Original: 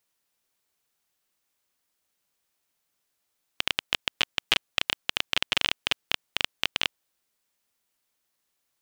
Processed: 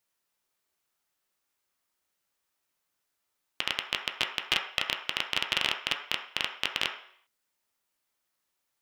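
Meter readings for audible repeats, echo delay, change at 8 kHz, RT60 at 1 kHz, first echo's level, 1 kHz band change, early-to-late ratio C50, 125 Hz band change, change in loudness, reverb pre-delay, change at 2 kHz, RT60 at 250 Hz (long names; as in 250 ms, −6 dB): no echo audible, no echo audible, −3.5 dB, 0.60 s, no echo audible, −0.5 dB, 7.0 dB, −3.5 dB, −2.5 dB, 3 ms, −2.0 dB, 0.60 s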